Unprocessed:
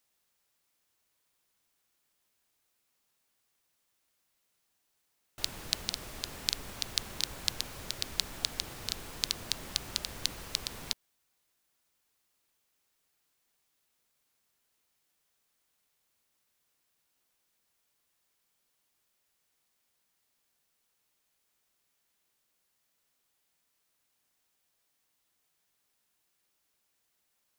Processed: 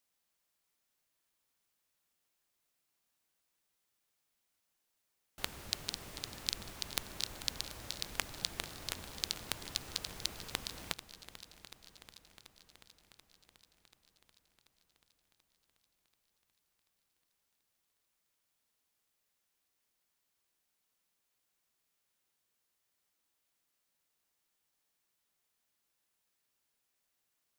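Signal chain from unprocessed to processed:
sub-harmonics by changed cycles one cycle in 3, inverted
feedback echo with a long and a short gap by turns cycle 735 ms, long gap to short 1.5 to 1, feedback 60%, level −15 dB
level −5 dB

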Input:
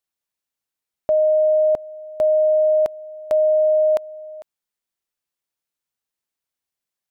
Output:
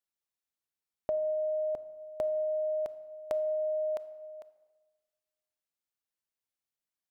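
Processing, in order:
downward compressor, threshold −21 dBFS, peak gain reduction 6 dB
on a send: convolution reverb RT60 1.3 s, pre-delay 24 ms, DRR 14 dB
on the sum: level −8 dB

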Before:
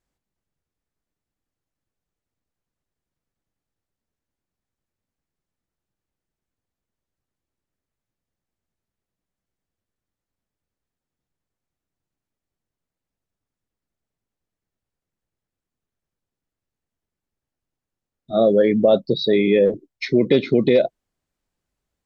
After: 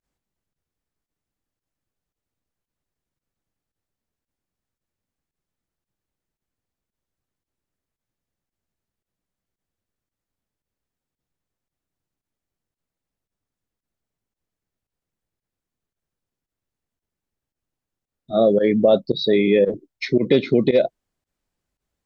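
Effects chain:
fake sidechain pumping 113 BPM, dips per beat 1, −22 dB, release 65 ms

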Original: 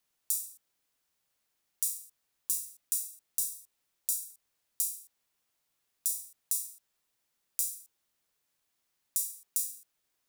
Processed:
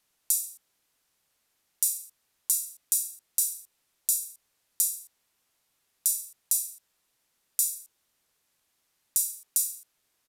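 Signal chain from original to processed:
downsampling to 32,000 Hz
level +6.5 dB

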